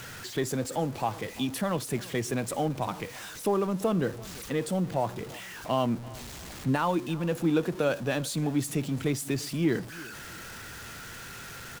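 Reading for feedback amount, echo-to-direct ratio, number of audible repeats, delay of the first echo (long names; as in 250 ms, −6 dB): 34%, −20.0 dB, 2, 340 ms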